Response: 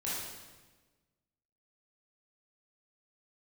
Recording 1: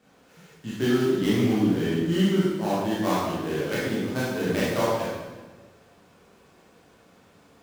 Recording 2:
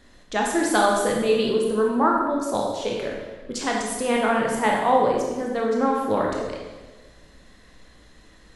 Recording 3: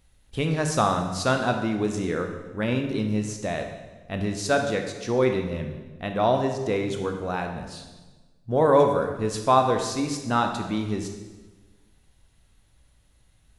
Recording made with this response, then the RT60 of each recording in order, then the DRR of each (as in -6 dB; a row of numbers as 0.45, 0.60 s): 1; 1.3, 1.3, 1.3 s; -8.5, -1.5, 4.5 dB